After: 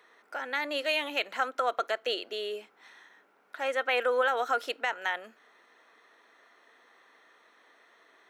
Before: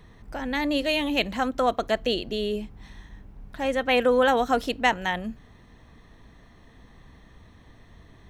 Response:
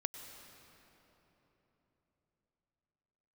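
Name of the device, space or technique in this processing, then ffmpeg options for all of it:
laptop speaker: -af "highpass=frequency=400:width=0.5412,highpass=frequency=400:width=1.3066,equalizer=frequency=1400:width_type=o:width=0.3:gain=11.5,equalizer=frequency=2200:width_type=o:width=0.59:gain=4,alimiter=limit=-13dB:level=0:latency=1:release=160,volume=-4.5dB"

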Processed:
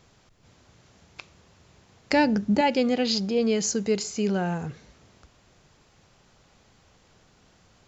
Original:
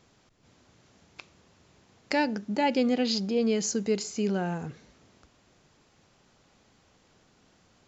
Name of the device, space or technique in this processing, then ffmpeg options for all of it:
low shelf boost with a cut just above: -filter_complex "[0:a]asettb=1/sr,asplit=3[link_01][link_02][link_03];[link_01]atrim=end=2.124[link_04];[link_02]atrim=start=2.12:end=2.61,asetpts=PTS-STARTPTS,afade=type=in:duration=0.004:curve=qsin,afade=type=out:start_time=0.486:duration=0.004:curve=qsin,lowshelf=frequency=280:gain=11.5[link_05];[link_03]atrim=start=2.606[link_06];[link_04][link_05]acrossfade=duration=0.004:curve1=hsin:curve2=qsin[link_07];[link_07][link_06]acrossfade=duration=0.004:curve1=qsin:curve2=hsin,lowshelf=frequency=98:gain=6,equalizer=frequency=270:width_type=o:width=0.89:gain=-4,volume=3.5dB"

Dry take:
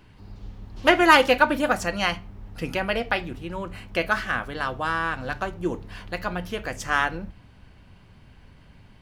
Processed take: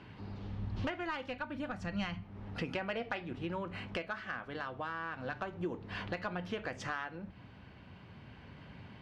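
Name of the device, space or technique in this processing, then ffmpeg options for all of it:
AM radio: -filter_complex "[0:a]highpass=100,lowpass=3700,acompressor=threshold=-37dB:ratio=6,asoftclip=type=tanh:threshold=-25dB,tremolo=f=0.33:d=0.29,asplit=3[link_01][link_02][link_03];[link_01]afade=type=out:start_time=0.5:duration=0.02[link_04];[link_02]asubboost=boost=8.5:cutoff=190,afade=type=in:start_time=0.5:duration=0.02,afade=type=out:start_time=2.22:duration=0.02[link_05];[link_03]afade=type=in:start_time=2.22:duration=0.02[link_06];[link_04][link_05][link_06]amix=inputs=3:normalize=0,volume=3dB"

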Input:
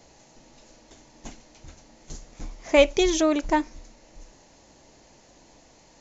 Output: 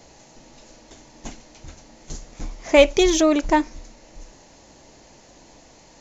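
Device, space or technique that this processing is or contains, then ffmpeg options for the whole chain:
parallel distortion: -filter_complex "[0:a]asplit=2[link_01][link_02];[link_02]asoftclip=type=hard:threshold=-21.5dB,volume=-11.5dB[link_03];[link_01][link_03]amix=inputs=2:normalize=0,volume=3dB"

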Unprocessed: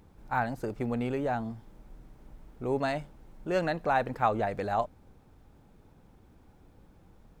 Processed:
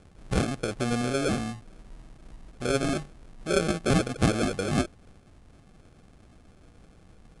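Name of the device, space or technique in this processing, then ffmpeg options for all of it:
crushed at another speed: -af "asetrate=88200,aresample=44100,acrusher=samples=23:mix=1:aa=0.000001,asetrate=22050,aresample=44100,volume=3.5dB"

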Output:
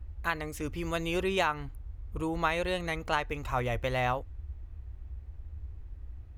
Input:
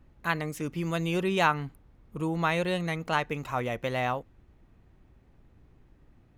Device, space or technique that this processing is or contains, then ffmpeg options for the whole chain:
car stereo with a boomy subwoofer: -af "lowshelf=frequency=110:width_type=q:width=3:gain=13.5,alimiter=limit=-14.5dB:level=0:latency=1:release=368"

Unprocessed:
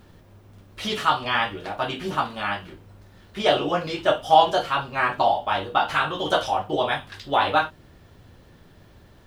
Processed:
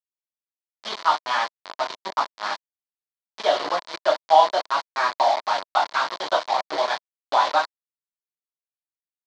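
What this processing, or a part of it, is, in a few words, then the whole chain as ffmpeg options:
hand-held game console: -af "acrusher=bits=3:mix=0:aa=0.000001,highpass=420,equalizer=frequency=440:width_type=q:width=4:gain=-4,equalizer=frequency=640:width_type=q:width=4:gain=5,equalizer=frequency=1000:width_type=q:width=4:gain=8,equalizer=frequency=2700:width_type=q:width=4:gain=-7,equalizer=frequency=4300:width_type=q:width=4:gain=5,lowpass=frequency=5100:width=0.5412,lowpass=frequency=5100:width=1.3066,volume=-3dB"

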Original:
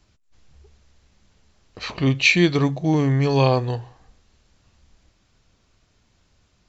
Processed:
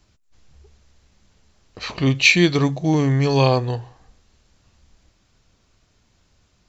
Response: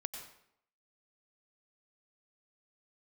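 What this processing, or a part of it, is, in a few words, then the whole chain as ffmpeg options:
exciter from parts: -filter_complex "[0:a]asettb=1/sr,asplit=3[link_01][link_02][link_03];[link_01]atrim=end=1.904[link_04];[link_02]atrim=start=1.9:end=3.58,asetpts=PTS-STARTPTS,afade=type=in:duration=0.004:curve=qsin,afade=type=out:start_time=1.676:duration=0.004:curve=qsin,highshelf=frequency=3600:gain=4.5[link_05];[link_03]atrim=start=3.576[link_06];[link_04][link_05]acrossfade=duration=0.004:curve1=hsin:curve2=qsin[link_07];[link_07][link_06]acrossfade=duration=0.004:curve1=qsin:curve2=hsin,asplit=2[link_08][link_09];[link_09]highpass=3900,asoftclip=type=tanh:threshold=-26.5dB,volume=-12.5dB[link_10];[link_08][link_10]amix=inputs=2:normalize=0,volume=1dB"

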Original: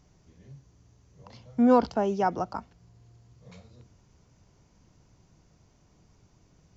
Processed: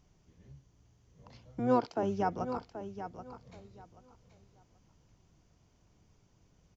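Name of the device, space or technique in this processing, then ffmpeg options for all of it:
octave pedal: -filter_complex "[0:a]asettb=1/sr,asplit=3[link_01][link_02][link_03];[link_01]atrim=end=1.594[link_04];[link_02]atrim=start=1.59:end=2.03,asetpts=PTS-STARTPTS,afade=type=in:duration=0.004:curve=qsin,afade=type=out:start_time=0.436:duration=0.004:curve=qsin,highpass=frequency=290:width=0.5412,highpass=frequency=290:width=1.3066[link_05];[link_03]atrim=start=2.026[link_06];[link_04][link_05]acrossfade=duration=0.004:curve1=hsin:curve2=qsin[link_07];[link_07][link_06]acrossfade=duration=0.004:curve1=qsin:curve2=hsin,asplit=2[link_08][link_09];[link_09]asetrate=22050,aresample=44100,atempo=2,volume=-7dB[link_10];[link_08][link_10]amix=inputs=2:normalize=0,aecho=1:1:781|1562|2343:0.299|0.0657|0.0144,volume=-6.5dB"

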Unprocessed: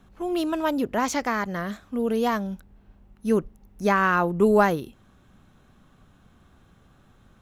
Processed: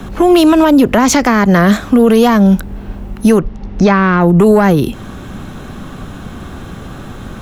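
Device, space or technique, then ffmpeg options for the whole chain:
mastering chain: -filter_complex "[0:a]asettb=1/sr,asplit=3[link_01][link_02][link_03];[link_01]atrim=end=3.394[link_04];[link_02]atrim=start=3.39:end=4.21,asetpts=PTS-STARTPTS,afade=type=in:duration=0.004:curve=qsin,afade=type=out:start_time=0.816:duration=0.004:curve=qsin,lowpass=frequency=5200:width=0.5412,lowpass=frequency=5200:width=1.3066[link_05];[link_03]atrim=start=4.206[link_06];[link_04][link_05]acrossfade=duration=0.004:curve1=hsin:curve2=qsin[link_07];[link_07][link_06]acrossfade=duration=0.004:curve1=qsin:curve2=hsin,equalizer=frequency=330:width_type=o:width=1.5:gain=3.5,acrossover=split=230|530[link_08][link_09][link_10];[link_08]acompressor=threshold=-30dB:ratio=4[link_11];[link_09]acompressor=threshold=-39dB:ratio=4[link_12];[link_10]acompressor=threshold=-31dB:ratio=4[link_13];[link_11][link_12][link_13]amix=inputs=3:normalize=0,acompressor=threshold=-37dB:ratio=1.5,asoftclip=type=tanh:threshold=-24dB,alimiter=level_in=28.5dB:limit=-1dB:release=50:level=0:latency=1,volume=-1dB"

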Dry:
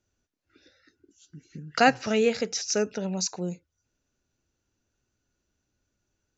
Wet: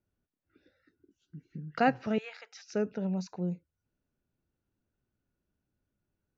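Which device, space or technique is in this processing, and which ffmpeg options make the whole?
phone in a pocket: -filter_complex "[0:a]asettb=1/sr,asplit=3[link_01][link_02][link_03];[link_01]atrim=end=2.184[link_04];[link_02]atrim=start=2.18:end=2.73,asetpts=PTS-STARTPTS,afade=type=in:duration=0.004:curve=qsin,afade=type=out:start_time=0.546:duration=0.004:curve=qsin,highpass=frequency=900:width=0.5412,highpass=frequency=900:width=1.3066[link_05];[link_03]atrim=start=2.726[link_06];[link_04][link_05]acrossfade=duration=0.004:curve1=hsin:curve2=qsin[link_07];[link_07][link_06]acrossfade=duration=0.004:curve1=qsin:curve2=hsin,lowpass=3700,equalizer=frequency=170:width_type=o:width=0.82:gain=5.5,highshelf=frequency=2100:gain=-9.5,volume=-5dB"

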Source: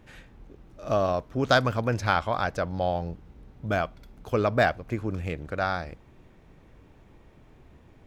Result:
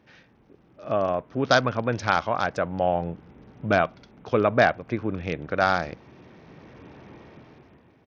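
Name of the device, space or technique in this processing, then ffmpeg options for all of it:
Bluetooth headset: -af "highpass=130,dynaudnorm=framelen=190:gausssize=9:maxgain=15.5dB,aresample=16000,aresample=44100,volume=-3dB" -ar 48000 -c:a sbc -b:a 64k

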